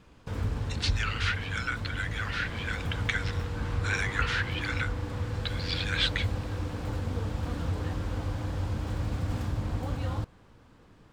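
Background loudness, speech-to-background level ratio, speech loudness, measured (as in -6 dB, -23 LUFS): -33.5 LUFS, 1.0 dB, -32.5 LUFS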